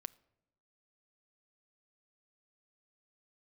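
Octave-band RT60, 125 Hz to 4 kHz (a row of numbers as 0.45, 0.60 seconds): 1.1, 1.1, 1.0, 0.80, 0.65, 0.50 seconds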